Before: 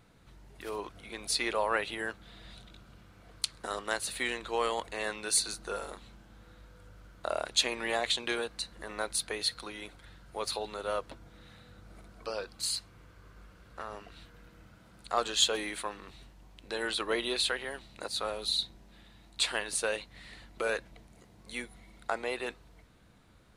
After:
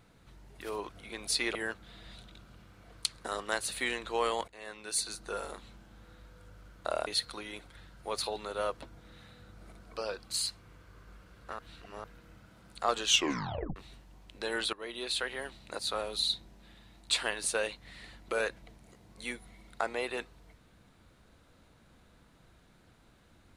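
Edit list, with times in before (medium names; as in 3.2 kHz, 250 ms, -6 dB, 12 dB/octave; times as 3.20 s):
1.55–1.94 s: delete
4.87–5.83 s: fade in, from -17 dB
7.46–9.36 s: delete
13.88–14.33 s: reverse
15.34 s: tape stop 0.71 s
17.02–17.69 s: fade in, from -18 dB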